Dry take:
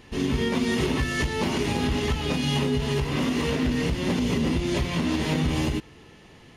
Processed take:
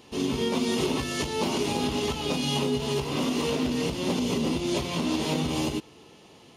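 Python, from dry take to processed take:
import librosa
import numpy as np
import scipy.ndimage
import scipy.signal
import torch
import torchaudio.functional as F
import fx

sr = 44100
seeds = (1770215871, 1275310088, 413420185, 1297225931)

y = fx.highpass(x, sr, hz=340.0, slope=6)
y = fx.peak_eq(y, sr, hz=1800.0, db=-12.0, octaves=0.73)
y = F.gain(torch.from_numpy(y), 2.5).numpy()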